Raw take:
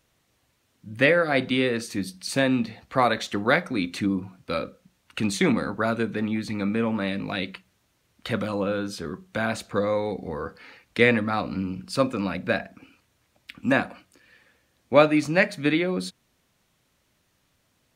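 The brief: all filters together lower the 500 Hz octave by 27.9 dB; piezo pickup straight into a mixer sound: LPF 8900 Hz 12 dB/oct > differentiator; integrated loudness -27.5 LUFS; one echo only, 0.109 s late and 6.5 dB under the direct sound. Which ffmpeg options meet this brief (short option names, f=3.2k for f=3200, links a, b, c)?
-af "lowpass=8.9k,aderivative,equalizer=f=500:t=o:g=-6.5,aecho=1:1:109:0.473,volume=11.5dB"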